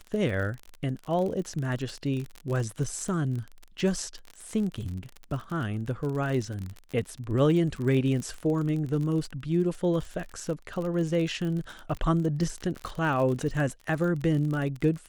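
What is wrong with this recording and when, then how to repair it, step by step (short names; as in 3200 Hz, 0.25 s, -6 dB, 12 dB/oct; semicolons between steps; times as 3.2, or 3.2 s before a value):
crackle 40/s -32 dBFS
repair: de-click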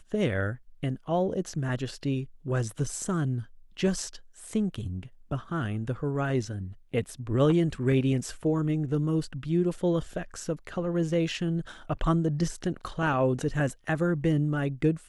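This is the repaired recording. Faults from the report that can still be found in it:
none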